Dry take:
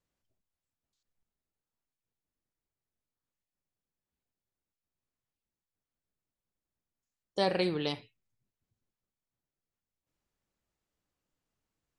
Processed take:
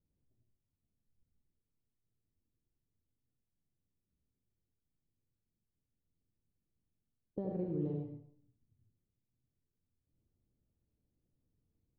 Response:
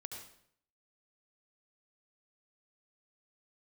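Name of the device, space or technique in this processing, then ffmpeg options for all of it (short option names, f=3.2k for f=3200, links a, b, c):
television next door: -filter_complex "[0:a]acompressor=threshold=-37dB:ratio=4,lowpass=280[a];[1:a]atrim=start_sample=2205[b];[a][b]afir=irnorm=-1:irlink=0,volume=12dB"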